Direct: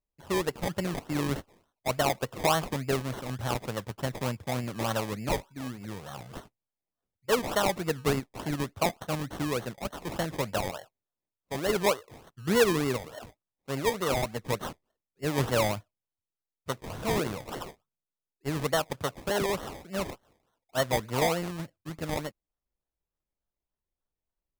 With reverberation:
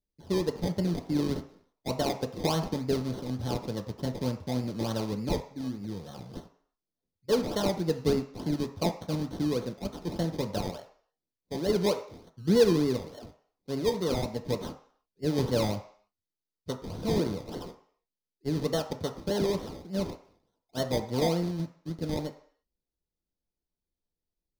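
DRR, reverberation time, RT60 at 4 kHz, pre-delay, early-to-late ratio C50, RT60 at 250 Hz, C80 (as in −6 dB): 4.5 dB, 0.55 s, 0.60 s, 3 ms, 11.5 dB, 0.50 s, 14.5 dB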